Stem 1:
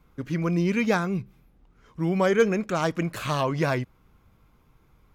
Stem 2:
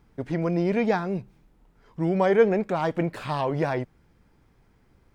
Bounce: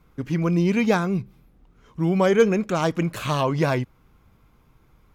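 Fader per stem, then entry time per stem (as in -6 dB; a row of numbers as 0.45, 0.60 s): +2.0, -9.0 dB; 0.00, 0.00 s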